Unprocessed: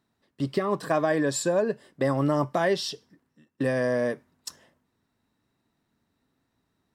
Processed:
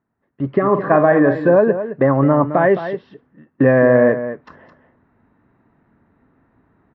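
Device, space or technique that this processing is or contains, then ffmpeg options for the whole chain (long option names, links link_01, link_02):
action camera in a waterproof case: -filter_complex "[0:a]asettb=1/sr,asplit=3[link_01][link_02][link_03];[link_01]atrim=end=0.614[link_04];[link_02]atrim=start=0.61:end=1.56,asetpts=PTS-STARTPTS,afade=type=in:duration=0.004:curve=qsin,afade=type=out:start_time=0.946:duration=0.004:curve=qsin,asplit=2[link_05][link_06];[link_06]adelay=46,volume=-8.5dB[link_07];[link_05][link_07]amix=inputs=2:normalize=0,atrim=end_sample=41895[link_08];[link_03]atrim=start=1.556[link_09];[link_04][link_08]acrossfade=duration=0.004:curve1=hsin:curve2=qsin[link_10];[link_10][link_09]acrossfade=duration=0.004:curve1=qsin:curve2=hsin,lowpass=frequency=1900:width=0.5412,lowpass=frequency=1900:width=1.3066,aecho=1:1:215:0.266,dynaudnorm=framelen=310:gausssize=3:maxgain=16.5dB" -ar 16000 -c:a aac -b:a 48k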